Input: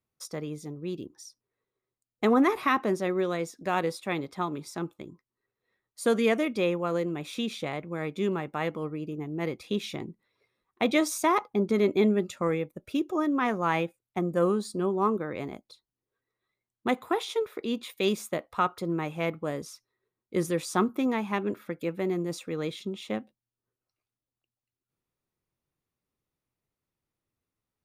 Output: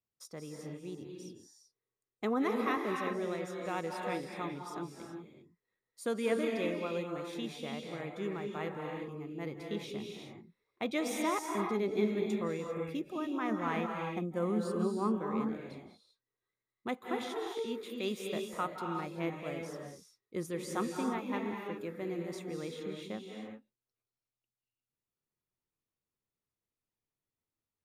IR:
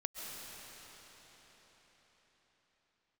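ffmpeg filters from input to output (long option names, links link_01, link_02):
-filter_complex "[0:a]asettb=1/sr,asplit=3[link_01][link_02][link_03];[link_01]atrim=end=13.504[link_04];[link_02]atrim=start=13.5:end=15.5,asetpts=PTS-STARTPTS,afade=type=in:duration=0.004:curve=qsin,afade=type=out:start_time=1.996:duration=0.004:curve=qsin,equalizer=frequency=230:width_type=o:width=0.43:gain=9[link_05];[link_03]atrim=start=15.496[link_06];[link_04][link_05]acrossfade=duration=0.004:curve1=hsin:curve2=qsin[link_07];[link_07][link_06]acrossfade=duration=0.004:curve1=qsin:curve2=hsin[link_08];[1:a]atrim=start_sample=2205,afade=type=out:start_time=0.33:duration=0.01,atrim=end_sample=14994,asetrate=30870,aresample=44100[link_09];[link_08][link_09]afir=irnorm=-1:irlink=0,volume=-8.5dB"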